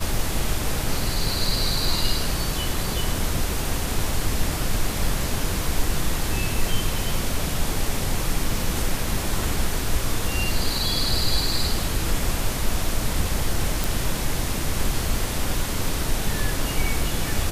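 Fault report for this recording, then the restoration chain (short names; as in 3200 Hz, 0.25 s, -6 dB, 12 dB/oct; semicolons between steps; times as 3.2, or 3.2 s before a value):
13.84 pop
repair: de-click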